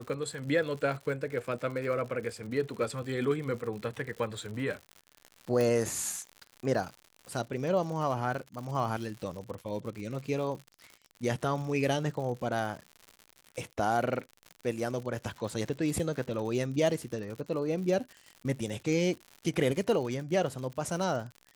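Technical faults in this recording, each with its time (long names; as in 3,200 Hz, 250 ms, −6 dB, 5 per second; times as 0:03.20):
surface crackle 110 per second −38 dBFS
0:05.61: click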